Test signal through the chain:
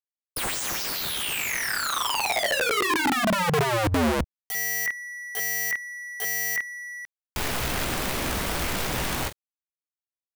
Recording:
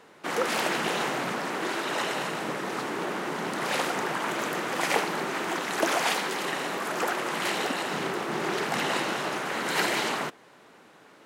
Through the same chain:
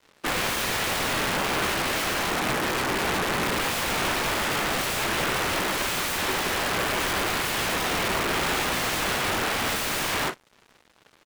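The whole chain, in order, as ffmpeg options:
ffmpeg -i in.wav -filter_complex "[0:a]asplit=2[link_01][link_02];[link_02]aecho=0:1:16|45:0.473|0.316[link_03];[link_01][link_03]amix=inputs=2:normalize=0,aeval=exprs='(mod(17.8*val(0)+1,2)-1)/17.8':channel_layout=same,acrossover=split=3200[link_04][link_05];[link_05]acompressor=threshold=-35dB:ratio=4:attack=1:release=60[link_06];[link_04][link_06]amix=inputs=2:normalize=0,aeval=exprs='sgn(val(0))*max(abs(val(0))-0.00376,0)':channel_layout=same,volume=8dB" out.wav

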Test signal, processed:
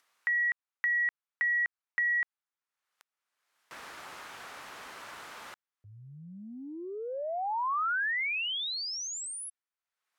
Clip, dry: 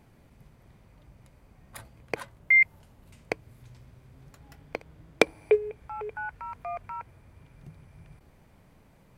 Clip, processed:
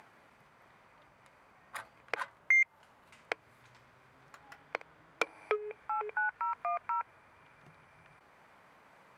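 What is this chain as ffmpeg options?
ffmpeg -i in.wav -af "asoftclip=type=tanh:threshold=-15.5dB,acompressor=mode=upward:threshold=-51dB:ratio=2.5,bandpass=frequency=1300:width_type=q:width=1.3:csg=0,acompressor=threshold=-38dB:ratio=2,aemphasis=mode=production:type=cd,volume=7dB" out.wav

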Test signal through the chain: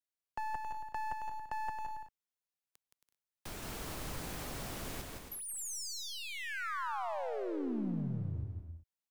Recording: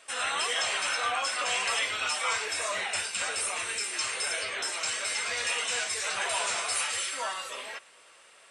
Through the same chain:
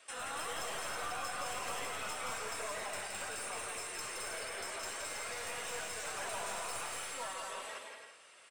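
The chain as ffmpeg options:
ffmpeg -i in.wav -filter_complex "[0:a]aeval=exprs='clip(val(0),-1,0.0335)':channel_layout=same,acrossover=split=230|1400|7400[link_01][link_02][link_03][link_04];[link_01]acompressor=threshold=-34dB:ratio=4[link_05];[link_02]acompressor=threshold=-35dB:ratio=4[link_06];[link_03]acompressor=threshold=-45dB:ratio=4[link_07];[link_04]acompressor=threshold=-42dB:ratio=4[link_08];[link_05][link_06][link_07][link_08]amix=inputs=4:normalize=0,aecho=1:1:170|272|333.2|369.9|392:0.631|0.398|0.251|0.158|0.1,volume=-5.5dB" out.wav

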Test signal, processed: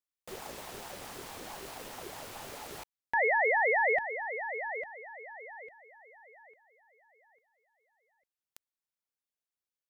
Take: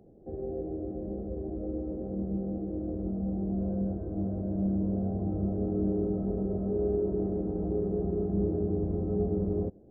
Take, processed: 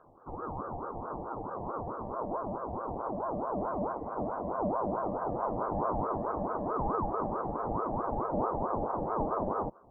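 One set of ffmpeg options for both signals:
ffmpeg -i in.wav -af "aeval=exprs='val(0)*sin(2*PI*630*n/s+630*0.4/4.6*sin(2*PI*4.6*n/s))':channel_layout=same" out.wav

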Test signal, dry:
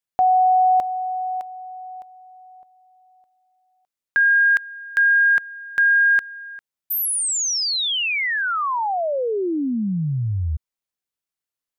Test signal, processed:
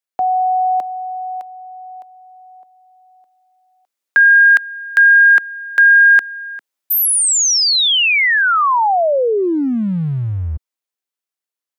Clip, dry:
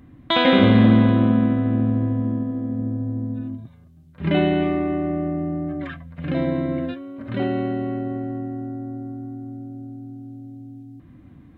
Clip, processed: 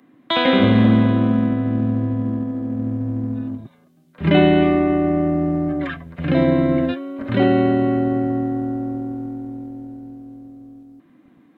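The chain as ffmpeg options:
ffmpeg -i in.wav -filter_complex "[0:a]acrossover=split=210|340|1200[link_01][link_02][link_03][link_04];[link_01]aeval=exprs='sgn(val(0))*max(abs(val(0))-0.00668,0)':channel_layout=same[link_05];[link_05][link_02][link_03][link_04]amix=inputs=4:normalize=0,dynaudnorm=framelen=170:gausssize=31:maxgain=14dB" out.wav

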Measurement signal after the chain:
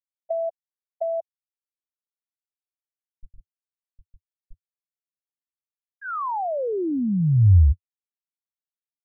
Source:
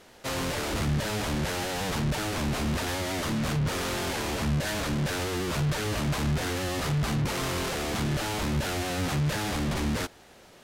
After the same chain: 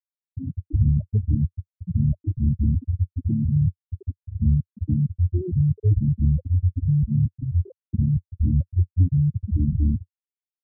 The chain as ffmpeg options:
ffmpeg -i in.wav -af "lowpass=1100,aemphasis=mode=reproduction:type=75fm,afftfilt=real='re*gte(hypot(re,im),0.224)':imag='im*gte(hypot(re,im),0.224)':win_size=1024:overlap=0.75,acompressor=threshold=-30dB:ratio=6,equalizer=frequency=91:width_type=o:width=1.4:gain=14.5,volume=5dB" out.wav

